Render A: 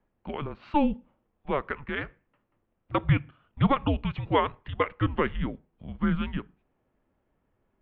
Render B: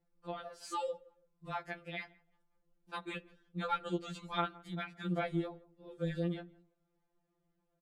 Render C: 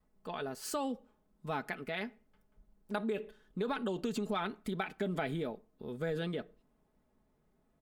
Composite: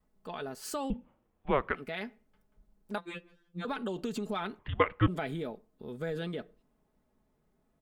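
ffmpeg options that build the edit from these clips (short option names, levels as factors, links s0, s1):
-filter_complex "[0:a]asplit=2[s0][s1];[2:a]asplit=4[s2][s3][s4][s5];[s2]atrim=end=0.902[s6];[s0]atrim=start=0.898:end=1.752[s7];[s3]atrim=start=1.748:end=2.982[s8];[1:a]atrim=start=2.978:end=3.652[s9];[s4]atrim=start=3.648:end=4.592[s10];[s1]atrim=start=4.588:end=5.082[s11];[s5]atrim=start=5.078[s12];[s6][s7]acrossfade=d=0.004:c1=hsin:c2=hsin[s13];[s13][s8]acrossfade=d=0.004:c1=hsin:c2=hsin[s14];[s14][s9]acrossfade=d=0.004:c1=hsin:c2=hsin[s15];[s15][s10]acrossfade=d=0.004:c1=hsin:c2=hsin[s16];[s16][s11]acrossfade=d=0.004:c1=hsin:c2=hsin[s17];[s17][s12]acrossfade=d=0.004:c1=hsin:c2=hsin"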